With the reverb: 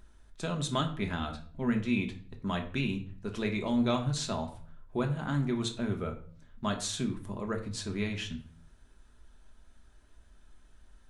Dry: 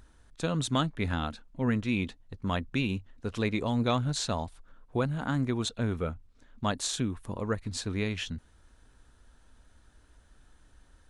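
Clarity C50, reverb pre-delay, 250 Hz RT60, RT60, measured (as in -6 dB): 11.5 dB, 3 ms, 0.70 s, 0.50 s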